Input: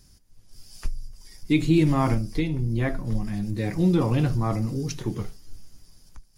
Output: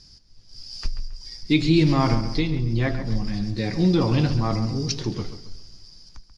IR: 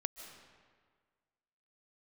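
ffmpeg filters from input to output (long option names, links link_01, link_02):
-filter_complex "[0:a]lowpass=frequency=4900:width_type=q:width=4.8,asplit=2[link_01][link_02];[link_02]adelay=136,lowpass=frequency=3200:poles=1,volume=-10.5dB,asplit=2[link_03][link_04];[link_04]adelay=136,lowpass=frequency=3200:poles=1,volume=0.36,asplit=2[link_05][link_06];[link_06]adelay=136,lowpass=frequency=3200:poles=1,volume=0.36,asplit=2[link_07][link_08];[link_08]adelay=136,lowpass=frequency=3200:poles=1,volume=0.36[link_09];[link_01][link_03][link_05][link_07][link_09]amix=inputs=5:normalize=0,asplit=2[link_10][link_11];[1:a]atrim=start_sample=2205[link_12];[link_11][link_12]afir=irnorm=-1:irlink=0,volume=-14.5dB[link_13];[link_10][link_13]amix=inputs=2:normalize=0"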